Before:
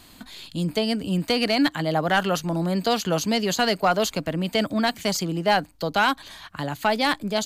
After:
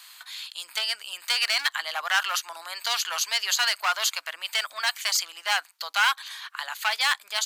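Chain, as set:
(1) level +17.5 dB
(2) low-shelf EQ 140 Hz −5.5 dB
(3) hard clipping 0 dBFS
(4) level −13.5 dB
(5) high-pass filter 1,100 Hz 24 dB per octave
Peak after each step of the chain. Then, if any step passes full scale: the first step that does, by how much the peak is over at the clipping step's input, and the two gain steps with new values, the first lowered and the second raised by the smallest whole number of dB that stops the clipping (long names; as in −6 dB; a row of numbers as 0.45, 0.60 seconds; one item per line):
+6.5, +6.5, 0.0, −13.5, −9.0 dBFS
step 1, 6.5 dB
step 1 +10.5 dB, step 4 −6.5 dB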